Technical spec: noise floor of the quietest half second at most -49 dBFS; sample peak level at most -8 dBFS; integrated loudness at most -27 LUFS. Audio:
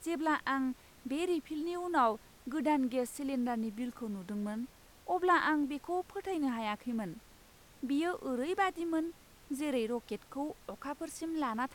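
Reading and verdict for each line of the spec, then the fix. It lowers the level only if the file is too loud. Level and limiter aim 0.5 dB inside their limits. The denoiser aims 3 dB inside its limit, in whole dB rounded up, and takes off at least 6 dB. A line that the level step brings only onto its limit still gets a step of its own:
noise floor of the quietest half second -59 dBFS: OK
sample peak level -16.5 dBFS: OK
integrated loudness -35.0 LUFS: OK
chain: none

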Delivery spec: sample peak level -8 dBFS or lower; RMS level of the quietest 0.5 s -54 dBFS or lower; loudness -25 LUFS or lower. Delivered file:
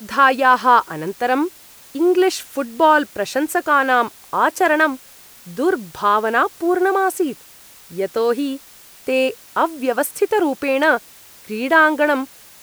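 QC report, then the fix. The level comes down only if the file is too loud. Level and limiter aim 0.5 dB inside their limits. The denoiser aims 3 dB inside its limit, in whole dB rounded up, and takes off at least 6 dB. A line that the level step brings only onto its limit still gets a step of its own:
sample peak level -2.0 dBFS: fail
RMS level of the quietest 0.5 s -44 dBFS: fail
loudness -18.0 LUFS: fail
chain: denoiser 6 dB, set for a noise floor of -44 dBFS; gain -7.5 dB

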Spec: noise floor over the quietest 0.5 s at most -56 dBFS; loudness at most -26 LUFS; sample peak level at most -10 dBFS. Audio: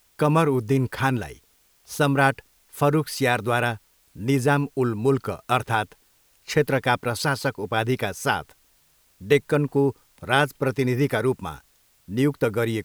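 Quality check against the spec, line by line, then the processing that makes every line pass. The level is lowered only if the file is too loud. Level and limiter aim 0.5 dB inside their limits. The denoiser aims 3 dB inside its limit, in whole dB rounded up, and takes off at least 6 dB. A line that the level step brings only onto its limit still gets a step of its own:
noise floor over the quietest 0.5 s -61 dBFS: OK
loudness -23.5 LUFS: fail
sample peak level -3.5 dBFS: fail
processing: gain -3 dB; limiter -10.5 dBFS

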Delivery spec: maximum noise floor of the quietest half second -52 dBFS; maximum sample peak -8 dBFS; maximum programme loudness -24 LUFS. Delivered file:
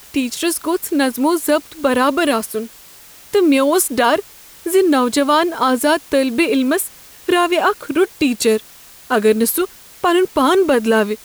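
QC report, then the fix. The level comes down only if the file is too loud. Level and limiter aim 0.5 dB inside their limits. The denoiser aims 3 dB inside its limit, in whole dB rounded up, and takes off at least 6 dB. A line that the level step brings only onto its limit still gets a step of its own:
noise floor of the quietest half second -42 dBFS: fail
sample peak -4.5 dBFS: fail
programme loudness -16.5 LUFS: fail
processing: denoiser 6 dB, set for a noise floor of -42 dBFS; gain -8 dB

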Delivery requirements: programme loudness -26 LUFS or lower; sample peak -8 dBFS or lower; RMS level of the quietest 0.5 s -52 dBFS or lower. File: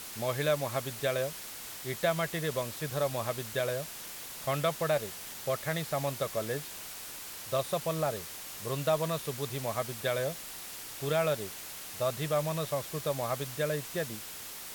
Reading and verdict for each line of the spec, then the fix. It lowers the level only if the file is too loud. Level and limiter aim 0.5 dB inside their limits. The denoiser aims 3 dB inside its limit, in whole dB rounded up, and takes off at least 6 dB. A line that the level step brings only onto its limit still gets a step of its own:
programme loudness -33.5 LUFS: OK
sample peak -16.0 dBFS: OK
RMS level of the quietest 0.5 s -43 dBFS: fail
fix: denoiser 12 dB, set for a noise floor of -43 dBFS

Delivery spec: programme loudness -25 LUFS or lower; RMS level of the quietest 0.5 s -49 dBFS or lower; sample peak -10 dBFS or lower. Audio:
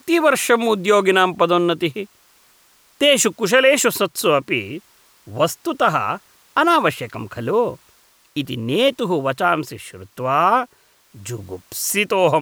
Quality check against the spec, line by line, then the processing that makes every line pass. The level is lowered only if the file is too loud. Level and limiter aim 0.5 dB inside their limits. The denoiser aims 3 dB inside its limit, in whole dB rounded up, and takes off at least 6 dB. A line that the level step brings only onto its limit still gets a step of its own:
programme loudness -18.0 LUFS: fail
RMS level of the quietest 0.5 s -55 dBFS: OK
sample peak -4.0 dBFS: fail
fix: gain -7.5 dB

